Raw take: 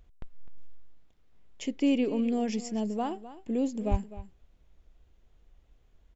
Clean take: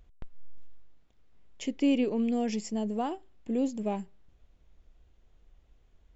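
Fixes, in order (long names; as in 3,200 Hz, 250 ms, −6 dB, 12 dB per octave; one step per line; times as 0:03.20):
0:03.90–0:04.02: high-pass filter 140 Hz 24 dB per octave
echo removal 255 ms −15 dB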